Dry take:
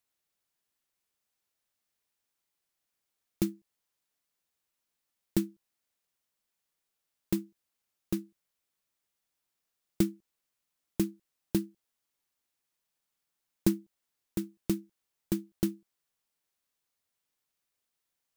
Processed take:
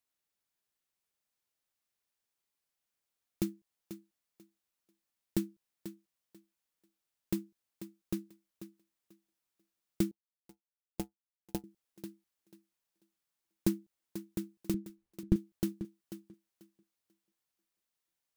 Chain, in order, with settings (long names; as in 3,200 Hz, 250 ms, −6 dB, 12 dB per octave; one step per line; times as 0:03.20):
0:14.74–0:15.36: RIAA equalisation playback
feedback echo with a high-pass in the loop 490 ms, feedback 21%, high-pass 170 Hz, level −11 dB
0:10.11–0:11.64: power curve on the samples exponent 2
level −4 dB